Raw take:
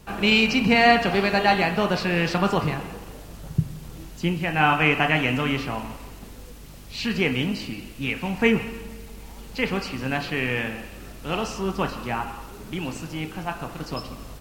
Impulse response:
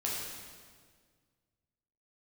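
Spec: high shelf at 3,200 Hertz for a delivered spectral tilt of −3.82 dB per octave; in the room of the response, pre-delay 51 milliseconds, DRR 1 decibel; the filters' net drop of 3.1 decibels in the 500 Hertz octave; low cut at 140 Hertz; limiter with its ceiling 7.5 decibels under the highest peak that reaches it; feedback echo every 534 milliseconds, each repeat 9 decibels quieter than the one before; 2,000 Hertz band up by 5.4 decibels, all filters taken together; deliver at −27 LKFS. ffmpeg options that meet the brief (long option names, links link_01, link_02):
-filter_complex "[0:a]highpass=140,equalizer=frequency=500:width_type=o:gain=-4.5,equalizer=frequency=2000:width_type=o:gain=4,highshelf=frequency=3200:gain=7.5,alimiter=limit=-9dB:level=0:latency=1,aecho=1:1:534|1068|1602|2136:0.355|0.124|0.0435|0.0152,asplit=2[link_01][link_02];[1:a]atrim=start_sample=2205,adelay=51[link_03];[link_02][link_03]afir=irnorm=-1:irlink=0,volume=-6dB[link_04];[link_01][link_04]amix=inputs=2:normalize=0,volume=-6.5dB"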